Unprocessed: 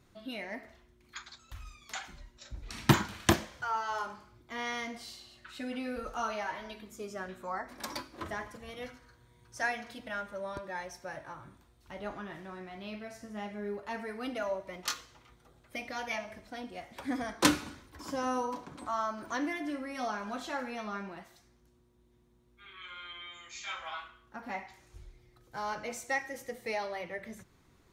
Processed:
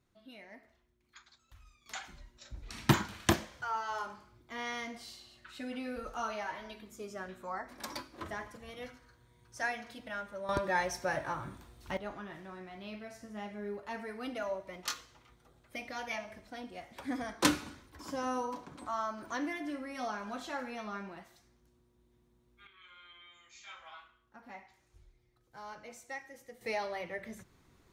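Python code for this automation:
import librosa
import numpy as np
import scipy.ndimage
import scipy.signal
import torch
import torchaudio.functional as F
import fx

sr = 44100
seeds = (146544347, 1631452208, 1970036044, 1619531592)

y = fx.gain(x, sr, db=fx.steps((0.0, -12.0), (1.86, -2.5), (10.49, 8.5), (11.97, -2.5), (22.67, -10.5), (26.61, -0.5)))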